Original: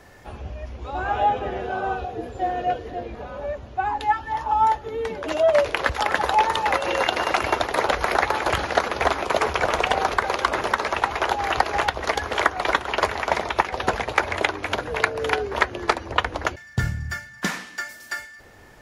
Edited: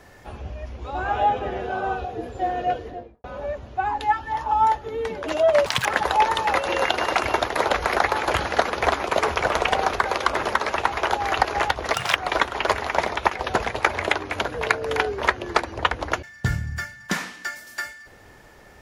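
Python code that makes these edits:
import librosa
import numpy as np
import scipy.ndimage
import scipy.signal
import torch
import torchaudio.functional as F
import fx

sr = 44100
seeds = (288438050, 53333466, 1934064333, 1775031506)

y = fx.studio_fade_out(x, sr, start_s=2.78, length_s=0.46)
y = fx.edit(y, sr, fx.speed_span(start_s=5.66, length_s=0.38, speed=1.94),
    fx.speed_span(start_s=12.12, length_s=0.37, speed=1.67), tone=tone)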